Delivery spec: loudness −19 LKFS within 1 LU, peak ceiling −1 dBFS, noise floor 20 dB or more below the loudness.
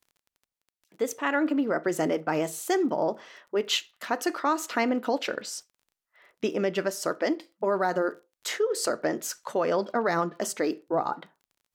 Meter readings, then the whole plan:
crackle rate 21 per second; integrated loudness −28.5 LKFS; sample peak −12.0 dBFS; target loudness −19.0 LKFS
→ click removal
level +9.5 dB

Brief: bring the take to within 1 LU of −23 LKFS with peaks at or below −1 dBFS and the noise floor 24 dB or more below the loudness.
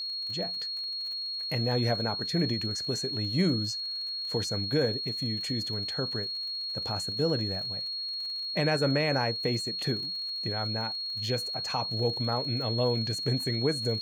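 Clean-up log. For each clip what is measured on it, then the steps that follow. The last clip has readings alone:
crackle rate 46 per second; interfering tone 4,300 Hz; level of the tone −32 dBFS; integrated loudness −29.0 LKFS; sample peak −15.0 dBFS; target loudness −23.0 LKFS
→ click removal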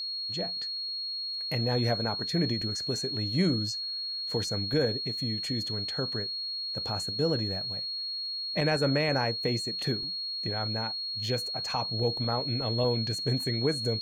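crackle rate 0.43 per second; interfering tone 4,300 Hz; level of the tone −32 dBFS
→ notch filter 4,300 Hz, Q 30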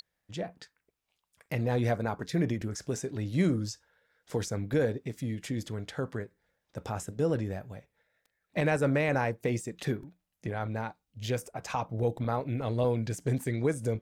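interfering tone none found; integrated loudness −32.0 LKFS; sample peak −16.5 dBFS; target loudness −23.0 LKFS
→ level +9 dB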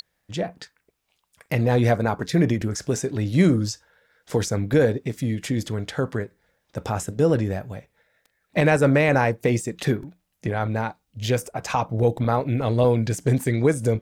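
integrated loudness −23.0 LKFS; sample peak −7.5 dBFS; background noise floor −74 dBFS

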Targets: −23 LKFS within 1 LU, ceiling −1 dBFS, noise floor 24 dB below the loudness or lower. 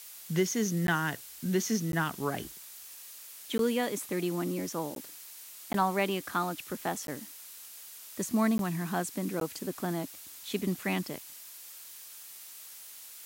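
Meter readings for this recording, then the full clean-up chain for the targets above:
number of dropouts 8; longest dropout 12 ms; background noise floor −48 dBFS; target noise floor −56 dBFS; integrated loudness −32.0 LKFS; sample peak −16.0 dBFS; target loudness −23.0 LKFS
→ repair the gap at 0:00.87/0:01.92/0:03.58/0:04.95/0:05.73/0:07.07/0:08.58/0:09.40, 12 ms
noise reduction from a noise print 8 dB
level +9 dB

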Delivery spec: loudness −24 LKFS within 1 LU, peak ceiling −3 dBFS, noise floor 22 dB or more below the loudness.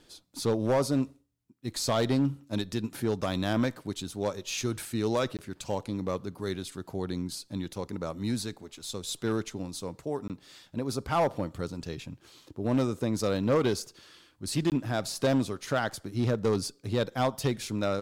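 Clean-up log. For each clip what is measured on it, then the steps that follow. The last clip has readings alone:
share of clipped samples 1.1%; peaks flattened at −19.5 dBFS; number of dropouts 3; longest dropout 18 ms; integrated loudness −31.0 LKFS; sample peak −19.5 dBFS; target loudness −24.0 LKFS
→ clipped peaks rebuilt −19.5 dBFS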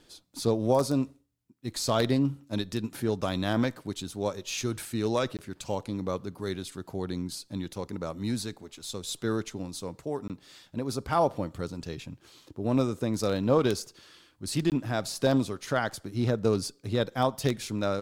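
share of clipped samples 0.0%; number of dropouts 3; longest dropout 18 ms
→ repair the gap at 0:05.37/0:10.28/0:14.70, 18 ms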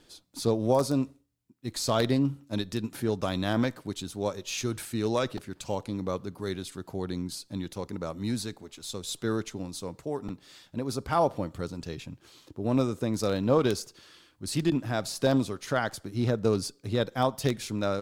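number of dropouts 0; integrated loudness −30.0 LKFS; sample peak −10.5 dBFS; target loudness −24.0 LKFS
→ level +6 dB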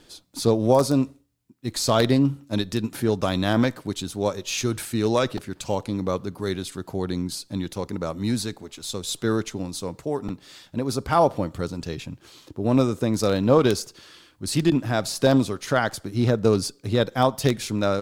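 integrated loudness −24.0 LKFS; sample peak −4.5 dBFS; background noise floor −57 dBFS

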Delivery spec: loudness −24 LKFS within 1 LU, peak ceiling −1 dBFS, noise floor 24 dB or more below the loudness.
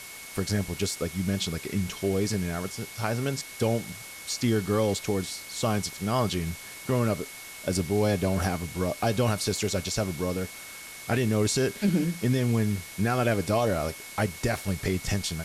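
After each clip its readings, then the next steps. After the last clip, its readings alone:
interfering tone 2,200 Hz; level of the tone −45 dBFS; background noise floor −43 dBFS; target noise floor −52 dBFS; integrated loudness −28.0 LKFS; sample peak −14.0 dBFS; target loudness −24.0 LKFS
→ notch filter 2,200 Hz, Q 30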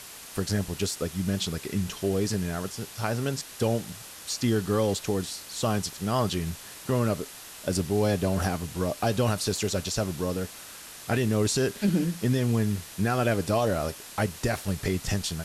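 interfering tone none found; background noise floor −44 dBFS; target noise floor −52 dBFS
→ broadband denoise 8 dB, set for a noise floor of −44 dBFS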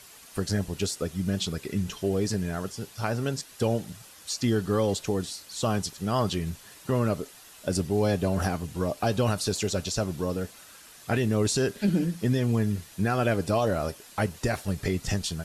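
background noise floor −50 dBFS; target noise floor −53 dBFS
→ broadband denoise 6 dB, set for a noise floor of −50 dBFS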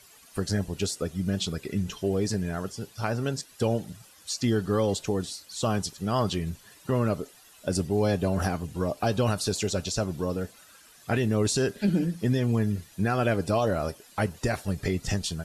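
background noise floor −54 dBFS; integrated loudness −28.5 LKFS; sample peak −14.5 dBFS; target loudness −24.0 LKFS
→ level +4.5 dB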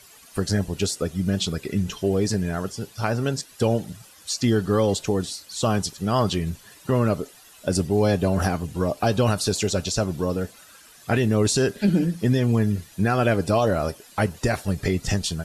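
integrated loudness −24.0 LKFS; sample peak −10.0 dBFS; background noise floor −50 dBFS

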